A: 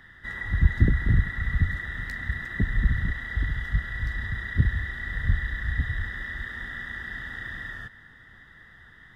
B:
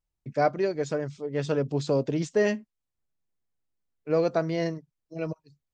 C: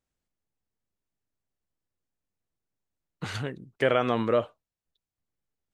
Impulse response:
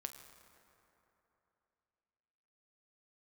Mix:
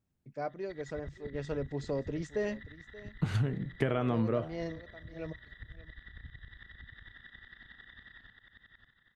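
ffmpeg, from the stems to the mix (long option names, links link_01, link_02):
-filter_complex "[0:a]acompressor=threshold=-30dB:ratio=2,lowpass=frequency=3800:width_type=q:width=4.5,aeval=exprs='val(0)*pow(10,-26*if(lt(mod(-11*n/s,1),2*abs(-11)/1000),1-mod(-11*n/s,1)/(2*abs(-11)/1000),(mod(-11*n/s,1)-2*abs(-11)/1000)/(1-2*abs(-11)/1000))/20)':channel_layout=same,adelay=450,volume=-12.5dB,asplit=2[link_01][link_02];[link_02]volume=-5dB[link_03];[1:a]dynaudnorm=framelen=540:gausssize=3:maxgain=5dB,volume=-14dB,asplit=2[link_04][link_05];[link_05]volume=-19dB[link_06];[2:a]equalizer=frequency=130:width_type=o:width=2.6:gain=13.5,bandreject=frequency=520:width=12,flanger=delay=9:depth=9.2:regen=77:speed=1.3:shape=triangular,volume=2dB,asplit=2[link_07][link_08];[link_08]volume=-22.5dB[link_09];[3:a]atrim=start_sample=2205[link_10];[link_09][link_10]afir=irnorm=-1:irlink=0[link_11];[link_03][link_06]amix=inputs=2:normalize=0,aecho=0:1:579:1[link_12];[link_01][link_04][link_07][link_11][link_12]amix=inputs=5:normalize=0,equalizer=frequency=5600:width_type=o:width=1.8:gain=-3.5,acompressor=threshold=-26dB:ratio=6"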